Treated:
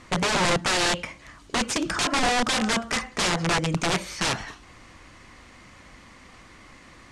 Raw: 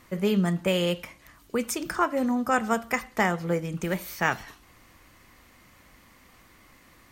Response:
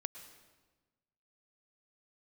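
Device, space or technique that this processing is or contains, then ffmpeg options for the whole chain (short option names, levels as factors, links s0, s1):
overflowing digital effects unit: -af "aeval=exprs='(mod(15.8*val(0)+1,2)-1)/15.8':c=same,lowpass=8100,lowpass=f=10000:w=0.5412,lowpass=f=10000:w=1.3066,volume=2.24"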